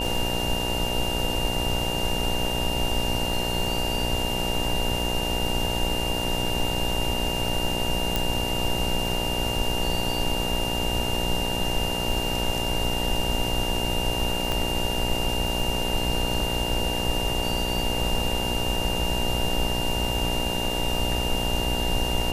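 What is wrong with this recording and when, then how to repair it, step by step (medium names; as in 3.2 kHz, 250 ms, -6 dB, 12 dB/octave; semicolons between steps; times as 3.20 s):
buzz 60 Hz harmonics 16 -30 dBFS
crackle 25 per s -30 dBFS
whine 2.8 kHz -29 dBFS
8.16 s: pop
14.52 s: pop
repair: de-click; de-hum 60 Hz, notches 16; band-stop 2.8 kHz, Q 30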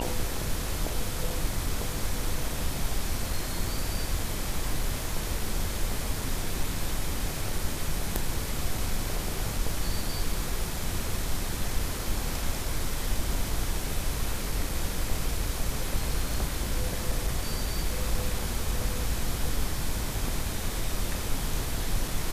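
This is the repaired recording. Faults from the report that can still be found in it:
8.16 s: pop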